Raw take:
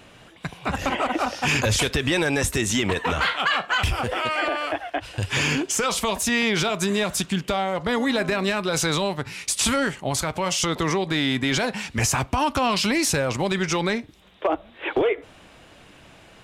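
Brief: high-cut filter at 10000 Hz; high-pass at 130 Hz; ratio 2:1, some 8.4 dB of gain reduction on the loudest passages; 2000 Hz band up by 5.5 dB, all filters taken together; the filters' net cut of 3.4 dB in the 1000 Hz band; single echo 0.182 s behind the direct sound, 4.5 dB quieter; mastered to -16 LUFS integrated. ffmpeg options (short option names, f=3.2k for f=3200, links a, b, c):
-af "highpass=130,lowpass=10k,equalizer=f=1k:t=o:g=-7.5,equalizer=f=2k:t=o:g=9,acompressor=threshold=-30dB:ratio=2,aecho=1:1:182:0.596,volume=11dB"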